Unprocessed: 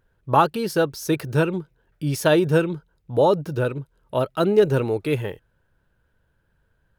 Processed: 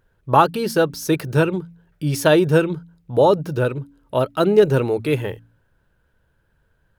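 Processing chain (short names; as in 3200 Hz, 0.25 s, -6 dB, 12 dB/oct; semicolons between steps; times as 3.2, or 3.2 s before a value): de-hum 56.52 Hz, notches 5; gain +3 dB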